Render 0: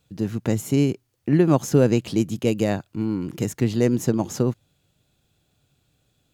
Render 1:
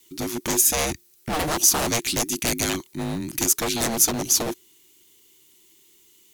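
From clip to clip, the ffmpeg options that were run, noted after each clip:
-af "afreqshift=-470,aeval=exprs='0.106*(abs(mod(val(0)/0.106+3,4)-2)-1)':c=same,crystalizer=i=9.5:c=0,volume=-2.5dB"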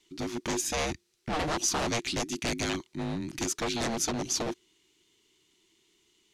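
-af "lowpass=5.1k,volume=-5dB"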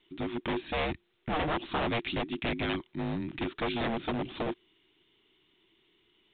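-ar 8000 -c:a pcm_mulaw

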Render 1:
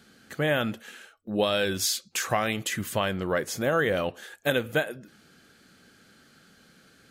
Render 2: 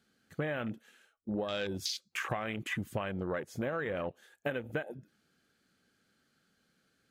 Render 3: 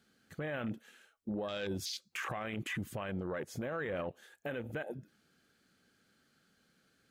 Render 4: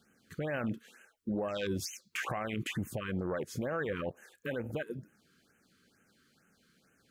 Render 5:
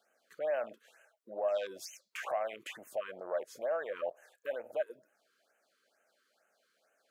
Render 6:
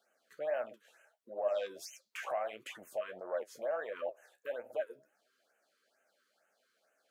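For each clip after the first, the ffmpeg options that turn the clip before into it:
-af "afwtdn=0.0251,acompressor=threshold=-31dB:ratio=12"
-af "alimiter=level_in=7.5dB:limit=-24dB:level=0:latency=1:release=23,volume=-7.5dB,volume=2dB"
-af "afftfilt=real='re*(1-between(b*sr/1024,650*pow(4400/650,0.5+0.5*sin(2*PI*2.2*pts/sr))/1.41,650*pow(4400/650,0.5+0.5*sin(2*PI*2.2*pts/sr))*1.41))':imag='im*(1-between(b*sr/1024,650*pow(4400/650,0.5+0.5*sin(2*PI*2.2*pts/sr))/1.41,650*pow(4400/650,0.5+0.5*sin(2*PI*2.2*pts/sr))*1.41))':win_size=1024:overlap=0.75,volume=3.5dB"
-af "highpass=f=630:t=q:w=5.4,volume=-6.5dB"
-af "flanger=delay=7.5:depth=6.8:regen=47:speed=1.5:shape=sinusoidal,volume=2.5dB"

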